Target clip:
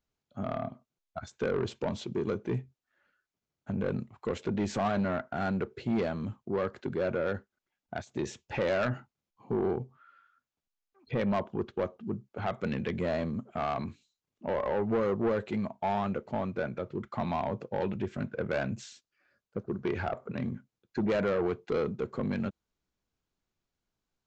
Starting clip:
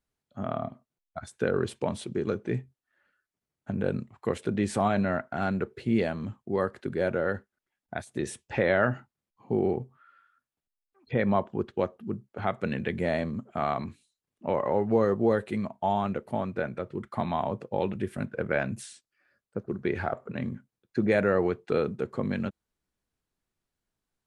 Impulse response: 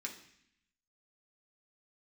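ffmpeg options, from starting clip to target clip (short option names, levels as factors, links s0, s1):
-af "equalizer=f=1800:t=o:w=0.2:g=-4.5,aresample=16000,asoftclip=type=tanh:threshold=0.0708,aresample=44100"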